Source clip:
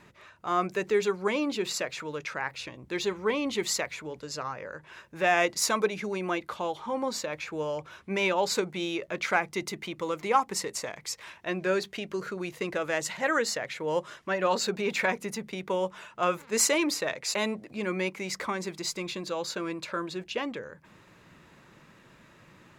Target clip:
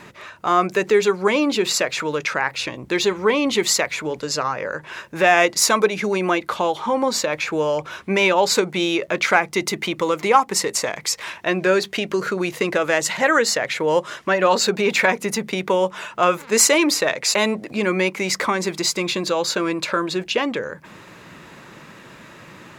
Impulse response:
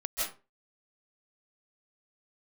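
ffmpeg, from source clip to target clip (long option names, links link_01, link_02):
-filter_complex "[0:a]lowshelf=frequency=95:gain=-10,asplit=2[link_01][link_02];[link_02]acompressor=threshold=-34dB:ratio=6,volume=2dB[link_03];[link_01][link_03]amix=inputs=2:normalize=0,volume=7dB"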